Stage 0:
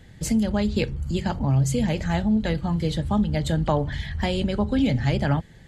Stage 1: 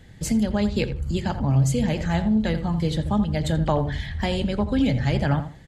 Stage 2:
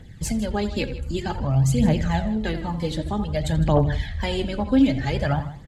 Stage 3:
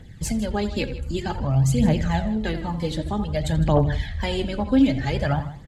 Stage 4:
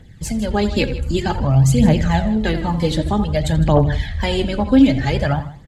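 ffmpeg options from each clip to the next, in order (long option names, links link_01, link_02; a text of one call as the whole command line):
ffmpeg -i in.wav -filter_complex "[0:a]asplit=2[link_01][link_02];[link_02]adelay=83,lowpass=frequency=2000:poles=1,volume=-10dB,asplit=2[link_03][link_04];[link_04]adelay=83,lowpass=frequency=2000:poles=1,volume=0.24,asplit=2[link_05][link_06];[link_06]adelay=83,lowpass=frequency=2000:poles=1,volume=0.24[link_07];[link_01][link_03][link_05][link_07]amix=inputs=4:normalize=0" out.wav
ffmpeg -i in.wav -af "aphaser=in_gain=1:out_gain=1:delay=4:decay=0.56:speed=0.53:type=triangular,aecho=1:1:158:0.141,volume=-1.5dB" out.wav
ffmpeg -i in.wav -af anull out.wav
ffmpeg -i in.wav -af "dynaudnorm=framelen=100:gausssize=9:maxgain=8dB" out.wav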